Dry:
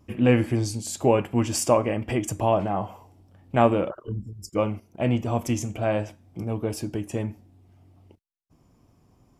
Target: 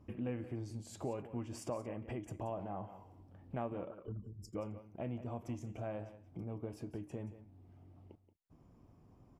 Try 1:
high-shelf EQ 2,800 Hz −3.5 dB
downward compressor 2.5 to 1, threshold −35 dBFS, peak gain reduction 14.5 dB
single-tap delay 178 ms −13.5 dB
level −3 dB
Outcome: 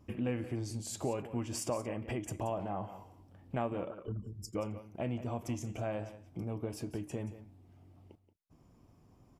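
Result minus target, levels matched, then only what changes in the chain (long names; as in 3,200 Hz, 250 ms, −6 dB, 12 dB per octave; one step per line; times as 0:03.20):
4,000 Hz band +5.5 dB; downward compressor: peak gain reduction −4.5 dB
change: high-shelf EQ 2,800 Hz −13.5 dB
change: downward compressor 2.5 to 1, threshold −43 dBFS, peak gain reduction 19 dB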